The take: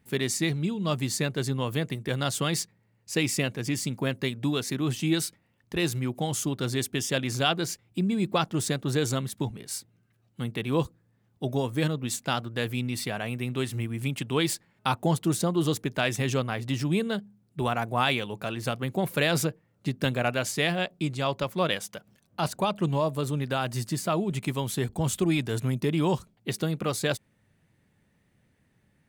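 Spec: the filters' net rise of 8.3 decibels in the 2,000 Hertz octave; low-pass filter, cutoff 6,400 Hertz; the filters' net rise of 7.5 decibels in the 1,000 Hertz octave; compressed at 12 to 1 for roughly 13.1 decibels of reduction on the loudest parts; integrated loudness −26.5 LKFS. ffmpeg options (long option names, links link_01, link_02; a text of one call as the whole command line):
ffmpeg -i in.wav -af "lowpass=6400,equalizer=frequency=1000:width_type=o:gain=7.5,equalizer=frequency=2000:width_type=o:gain=8.5,acompressor=threshold=-27dB:ratio=12,volume=6.5dB" out.wav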